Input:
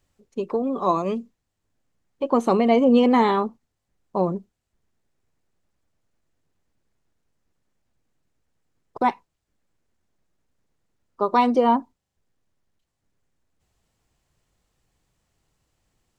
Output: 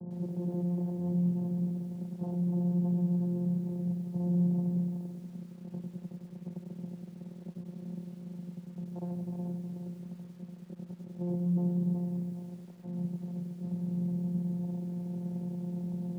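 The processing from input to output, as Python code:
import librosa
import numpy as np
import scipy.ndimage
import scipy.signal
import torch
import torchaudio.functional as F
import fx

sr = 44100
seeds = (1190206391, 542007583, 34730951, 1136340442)

y = np.sign(x) * np.sqrt(np.mean(np.square(x)))
y = fx.low_shelf(y, sr, hz=220.0, db=5.0)
y = fx.rider(y, sr, range_db=4, speed_s=2.0)
y = 10.0 ** (-32.0 / 20.0) * (np.abs((y / 10.0 ** (-32.0 / 20.0) + 3.0) % 4.0 - 2.0) - 1.0)
y = scipy.signal.sosfilt(scipy.signal.butter(8, 670.0, 'lowpass', fs=sr, output='sos'), y)
y = fx.tilt_eq(y, sr, slope=-3.0)
y = y + 10.0 ** (-5.0 / 20.0) * np.pad(y, (int(371 * sr / 1000.0), 0))[:len(y)]
y = fx.vocoder(y, sr, bands=8, carrier='saw', carrier_hz=176.0)
y = fx.echo_crushed(y, sr, ms=97, feedback_pct=55, bits=10, wet_db=-7.0)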